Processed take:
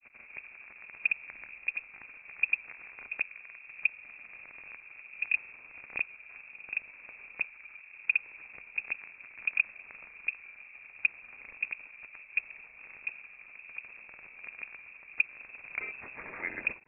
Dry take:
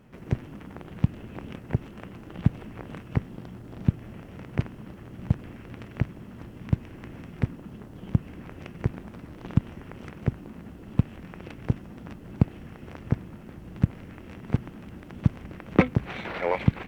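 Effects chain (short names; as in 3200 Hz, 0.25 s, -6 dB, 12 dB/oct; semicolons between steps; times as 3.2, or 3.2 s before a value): grains; inverted band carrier 2600 Hz; gain -7 dB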